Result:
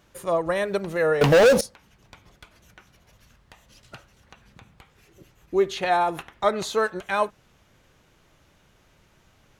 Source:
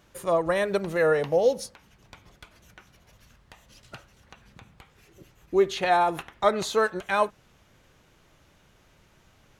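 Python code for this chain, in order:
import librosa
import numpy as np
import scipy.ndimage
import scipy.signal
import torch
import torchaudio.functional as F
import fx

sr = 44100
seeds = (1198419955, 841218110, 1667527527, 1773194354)

y = fx.leveller(x, sr, passes=5, at=(1.21, 1.61))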